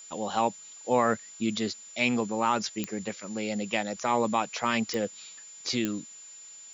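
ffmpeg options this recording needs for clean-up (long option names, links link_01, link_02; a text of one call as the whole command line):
ffmpeg -i in.wav -af "adeclick=threshold=4,bandreject=frequency=7100:width=30,afftdn=noise_reduction=26:noise_floor=-48" out.wav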